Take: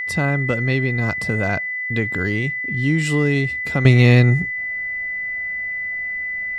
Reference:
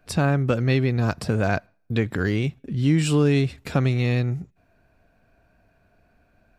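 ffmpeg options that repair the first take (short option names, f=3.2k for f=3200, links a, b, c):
-af "bandreject=f=2k:w=30,asetnsamples=n=441:p=0,asendcmd='3.85 volume volume -10dB',volume=0dB"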